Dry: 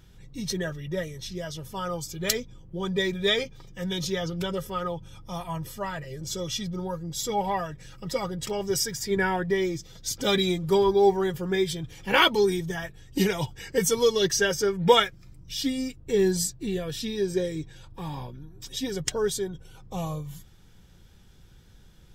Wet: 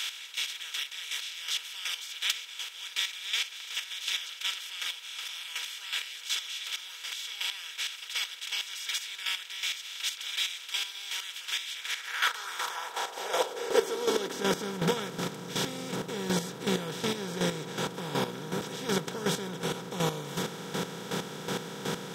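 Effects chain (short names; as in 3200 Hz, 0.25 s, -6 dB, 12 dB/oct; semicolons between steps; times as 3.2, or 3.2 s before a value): per-bin compression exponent 0.2; gate -8 dBFS, range -14 dB; high-pass sweep 2600 Hz -> 160 Hz, 11.69–14.83; chopper 2.7 Hz, depth 65%, duty 25%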